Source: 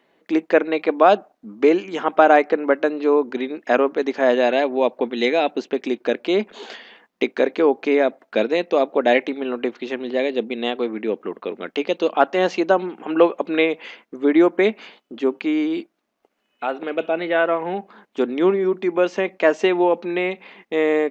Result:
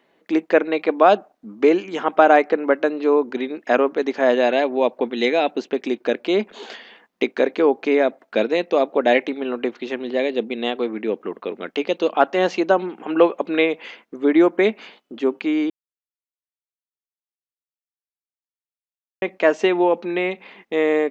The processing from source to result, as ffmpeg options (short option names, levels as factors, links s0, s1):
-filter_complex "[0:a]asplit=3[s0][s1][s2];[s0]atrim=end=15.7,asetpts=PTS-STARTPTS,afade=t=out:st=15.696:d=0.004:c=hsin[s3];[s1]atrim=start=15.7:end=19.22,asetpts=PTS-STARTPTS,volume=0[s4];[s2]atrim=start=19.22,asetpts=PTS-STARTPTS,afade=t=in:d=0.004:c=hsin[s5];[s3][s4][s5]concat=n=3:v=0:a=1"